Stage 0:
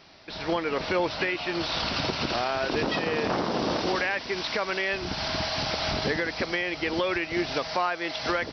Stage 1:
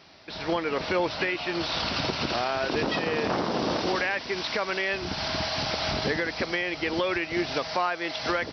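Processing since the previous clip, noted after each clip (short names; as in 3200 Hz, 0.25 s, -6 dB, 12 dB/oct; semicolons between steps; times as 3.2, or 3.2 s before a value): HPF 45 Hz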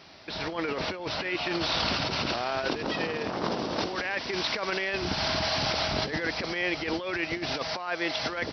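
negative-ratio compressor -29 dBFS, ratio -0.5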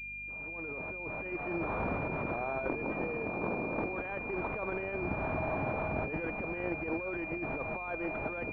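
opening faded in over 1.64 s; hum 50 Hz, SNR 20 dB; pulse-width modulation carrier 2400 Hz; gain -4 dB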